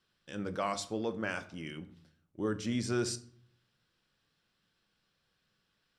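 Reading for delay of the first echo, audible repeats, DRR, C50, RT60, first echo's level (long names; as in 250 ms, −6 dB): no echo audible, no echo audible, 9.5 dB, 16.0 dB, 0.55 s, no echo audible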